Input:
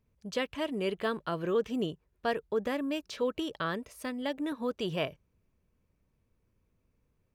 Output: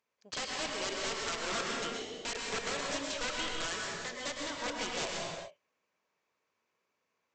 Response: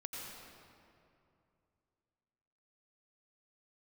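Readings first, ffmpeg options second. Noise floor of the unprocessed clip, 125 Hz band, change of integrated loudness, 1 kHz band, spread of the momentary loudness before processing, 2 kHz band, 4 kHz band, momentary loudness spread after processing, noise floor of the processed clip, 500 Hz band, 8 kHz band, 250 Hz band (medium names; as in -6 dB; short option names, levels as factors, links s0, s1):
-76 dBFS, -8.5 dB, -2.0 dB, -0.5 dB, 5 LU, +2.5 dB, +5.5 dB, 5 LU, -83 dBFS, -7.5 dB, +14.5 dB, -10.5 dB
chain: -filter_complex "[0:a]highpass=730,aresample=16000,aeval=exprs='(mod(44.7*val(0)+1,2)-1)/44.7':c=same,aresample=44100[s0];[1:a]atrim=start_sample=2205,afade=t=out:st=0.39:d=0.01,atrim=end_sample=17640,asetrate=35280,aresample=44100[s1];[s0][s1]afir=irnorm=-1:irlink=0,volume=2"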